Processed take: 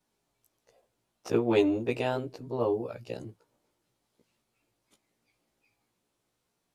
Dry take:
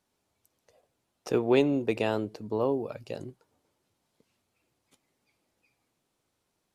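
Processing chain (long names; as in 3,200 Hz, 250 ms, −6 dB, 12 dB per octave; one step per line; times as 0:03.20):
every overlapping window played backwards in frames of 34 ms
level +2 dB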